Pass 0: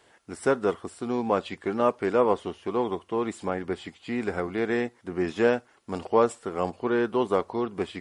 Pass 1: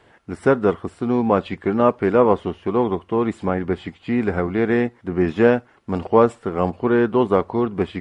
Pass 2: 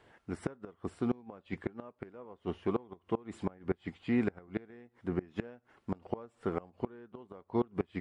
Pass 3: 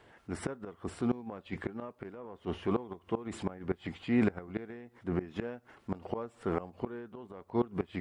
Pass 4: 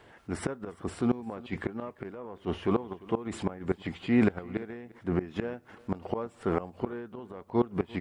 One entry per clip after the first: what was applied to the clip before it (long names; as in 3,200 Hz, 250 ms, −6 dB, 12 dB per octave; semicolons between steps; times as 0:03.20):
bass and treble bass +7 dB, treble −13 dB; level +6 dB
gate with flip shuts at −10 dBFS, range −26 dB; level −8.5 dB
transient designer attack −4 dB, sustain +6 dB; level +3 dB
single-tap delay 346 ms −22.5 dB; level +4 dB